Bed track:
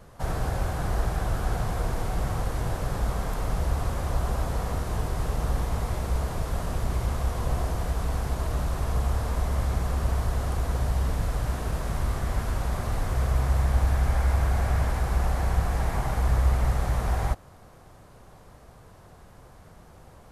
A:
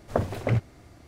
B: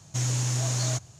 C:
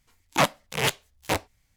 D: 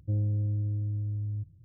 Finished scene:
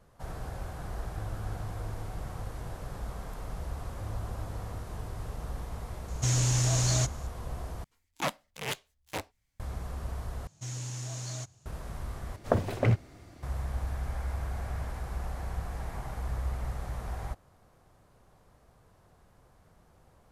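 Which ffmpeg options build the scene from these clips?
-filter_complex "[4:a]asplit=2[a][b];[2:a]asplit=2[c][d];[0:a]volume=-11dB[e];[c]acontrast=86[f];[e]asplit=4[g][h][i][j];[g]atrim=end=7.844[k];[3:a]atrim=end=1.76,asetpts=PTS-STARTPTS,volume=-10.5dB[l];[h]atrim=start=9.596:end=10.474[m];[d]atrim=end=1.19,asetpts=PTS-STARTPTS,volume=-11dB[n];[i]atrim=start=11.656:end=12.364[o];[1:a]atrim=end=1.07,asetpts=PTS-STARTPTS,volume=-0.5dB[p];[j]atrim=start=13.426[q];[a]atrim=end=1.64,asetpts=PTS-STARTPTS,volume=-12.5dB,afade=t=in:d=0.004:c=hsin,afade=t=out:st=1.636:d=0.004:c=hsin,adelay=1080[r];[b]atrim=end=1.64,asetpts=PTS-STARTPTS,volume=-14.5dB,afade=t=in:d=0.004:c=hsin,afade=t=out:st=1.636:d=0.004:c=hsin,adelay=3910[s];[f]atrim=end=1.19,asetpts=PTS-STARTPTS,volume=-6.5dB,afade=t=in:d=0.004:c=hsin,afade=t=out:st=1.186:d=0.004:c=hsin,adelay=6080[t];[k][l]acrossfade=d=0.004:c1=hsin:c2=hsin[u];[u][m]acrossfade=d=0.004:c1=hsin:c2=hsin[v];[v][n]acrossfade=d=0.004:c1=hsin:c2=hsin[w];[w][o]acrossfade=d=0.004:c1=hsin:c2=hsin[x];[x][p]acrossfade=d=0.004:c1=hsin:c2=hsin[y];[y][q]acrossfade=d=0.004:c1=hsin:c2=hsin[z];[z][r][s][t]amix=inputs=4:normalize=0"

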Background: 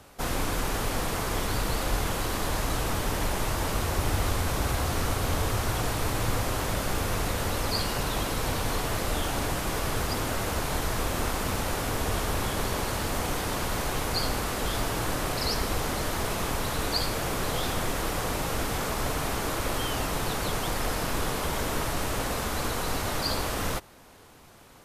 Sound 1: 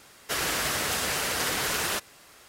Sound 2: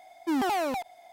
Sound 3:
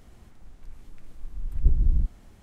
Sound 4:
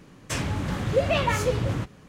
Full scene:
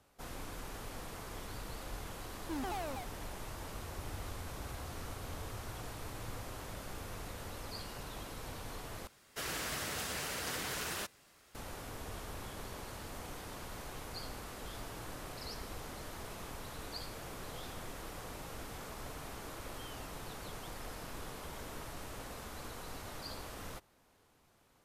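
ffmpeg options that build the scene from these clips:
-filter_complex "[0:a]volume=-16.5dB[a];[1:a]lowshelf=f=240:g=5.5[b];[a]asplit=2[c][d];[c]atrim=end=9.074[e];[b]atrim=end=2.48,asetpts=PTS-STARTPTS,volume=-11.5dB[f];[d]atrim=start=11.546[g];[2:a]atrim=end=1.12,asetpts=PTS-STARTPTS,volume=-13dB,afade=t=in:d=0.004:c=hsin,afade=t=out:st=1.116:d=0.004:c=hsin,adelay=2220[h];[e][f]acrossfade=d=0.004:c1=hsin:c2=hsin[i];[i][g]acrossfade=d=0.004:c1=hsin:c2=hsin[j];[j][h]amix=inputs=2:normalize=0"

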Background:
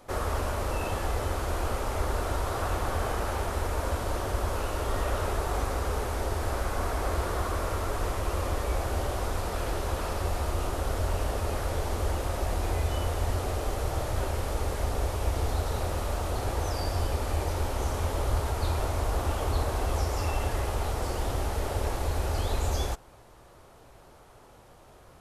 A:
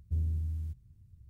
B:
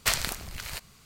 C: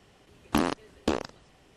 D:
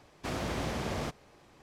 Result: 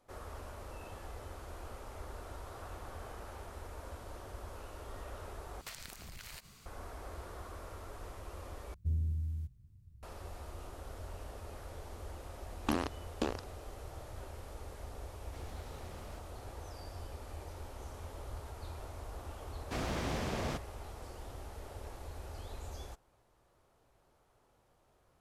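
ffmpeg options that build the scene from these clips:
-filter_complex "[4:a]asplit=2[a][b];[0:a]volume=-17dB[c];[2:a]acompressor=threshold=-42dB:ratio=6:attack=3.2:release=140:knee=1:detection=peak[d];[a]asoftclip=type=tanh:threshold=-39.5dB[e];[c]asplit=3[f][g][h];[f]atrim=end=5.614[i];[d]atrim=end=1.05,asetpts=PTS-STARTPTS,volume=-2.5dB[j];[g]atrim=start=6.656:end=8.744[k];[1:a]atrim=end=1.29,asetpts=PTS-STARTPTS,volume=-2dB[l];[h]atrim=start=10.026[m];[3:a]atrim=end=1.76,asetpts=PTS-STARTPTS,volume=-8dB,afade=t=in:d=0.004:c=hsin,afade=t=out:st=1.756:d=0.004:c=hsin,adelay=12140[n];[e]atrim=end=1.62,asetpts=PTS-STARTPTS,volume=-13dB,afade=t=in:d=0.004:c=hsin,afade=t=out:st=1.616:d=0.004:c=hsin,adelay=15090[o];[b]atrim=end=1.62,asetpts=PTS-STARTPTS,volume=-2.5dB,afade=t=in:d=0.004:c=hsin,afade=t=out:st=1.616:d=0.004:c=hsin,adelay=19470[p];[i][j]acrossfade=d=0.004:c1=hsin:c2=hsin[q];[q][k]acrossfade=d=0.004:c1=hsin:c2=hsin[r];[r][l]acrossfade=d=0.004:c1=hsin:c2=hsin[s];[s][m]acrossfade=d=0.004:c1=hsin:c2=hsin[t];[t][n][o][p]amix=inputs=4:normalize=0"

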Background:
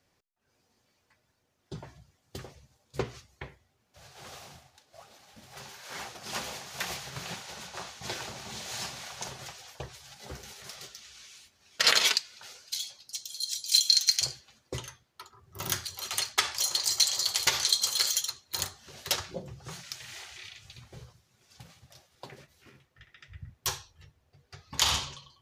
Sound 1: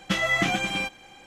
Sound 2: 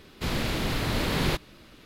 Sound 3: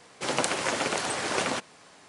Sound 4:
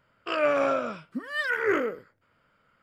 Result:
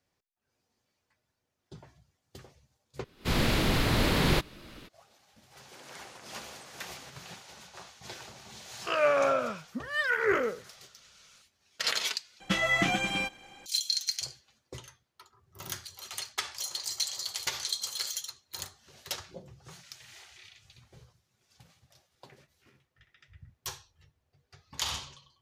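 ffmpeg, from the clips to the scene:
-filter_complex "[0:a]volume=-7.5dB[a];[2:a]dynaudnorm=f=130:g=3:m=15dB[b];[3:a]acompressor=threshold=-40dB:ratio=6:attack=3.2:release=140:knee=1:detection=peak[c];[4:a]equalizer=f=300:w=5:g=-12[d];[a]asplit=3[e][f][g];[e]atrim=end=3.044[h];[b]atrim=end=1.85,asetpts=PTS-STARTPTS,volume=-11.5dB[i];[f]atrim=start=4.886:end=12.404[j];[1:a]atrim=end=1.26,asetpts=PTS-STARTPTS,volume=-3dB[k];[g]atrim=start=13.656[l];[c]atrim=end=2.08,asetpts=PTS-STARTPTS,volume=-9.5dB,afade=t=in:d=0.004:c=hsin,afade=t=out:st=2.076:d=0.004:c=hsin,adelay=5510[m];[d]atrim=end=2.82,asetpts=PTS-STARTPTS,volume=-0.5dB,afade=t=in:d=0.004:c=hsin,afade=t=out:st=2.816:d=0.004:c=hsin,adelay=8600[n];[h][i]acrossfade=d=0.004:c1=hsin:c2=hsin[o];[o][j]acrossfade=d=0.004:c1=hsin:c2=hsin[p];[p][k]acrossfade=d=0.004:c1=hsin:c2=hsin[q];[q][l]acrossfade=d=0.004:c1=hsin:c2=hsin[r];[r][m][n]amix=inputs=3:normalize=0"

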